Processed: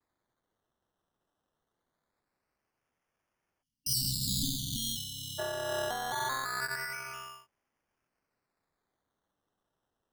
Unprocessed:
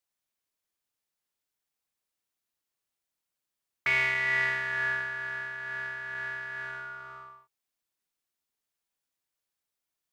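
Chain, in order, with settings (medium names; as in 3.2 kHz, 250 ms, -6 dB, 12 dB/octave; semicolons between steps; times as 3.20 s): 4.00–4.76 s: spectral contrast reduction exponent 0.58; decimation with a swept rate 15×, swing 60% 0.23 Hz; 3.63–5.39 s: spectral selection erased 290–2800 Hz; vibrato 0.47 Hz 26 cents; trim +2.5 dB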